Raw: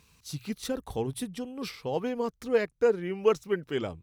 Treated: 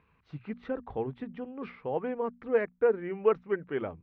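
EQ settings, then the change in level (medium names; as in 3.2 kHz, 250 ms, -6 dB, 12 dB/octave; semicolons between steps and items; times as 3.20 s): low-pass 2.1 kHz 24 dB/octave; bass shelf 220 Hz -6 dB; hum notches 60/120/180/240 Hz; 0.0 dB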